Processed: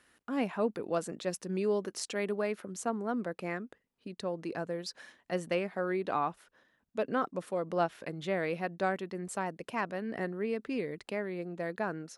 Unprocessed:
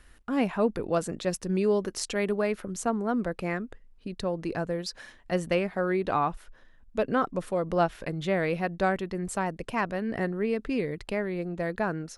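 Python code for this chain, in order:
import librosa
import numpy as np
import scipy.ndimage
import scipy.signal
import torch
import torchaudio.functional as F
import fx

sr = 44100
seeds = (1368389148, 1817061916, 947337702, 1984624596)

y = scipy.signal.sosfilt(scipy.signal.butter(2, 180.0, 'highpass', fs=sr, output='sos'), x)
y = y * 10.0 ** (-5.0 / 20.0)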